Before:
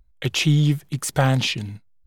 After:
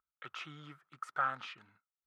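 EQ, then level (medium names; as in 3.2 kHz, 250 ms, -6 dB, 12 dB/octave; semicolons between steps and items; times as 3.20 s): band-pass filter 1.3 kHz, Q 12; +3.5 dB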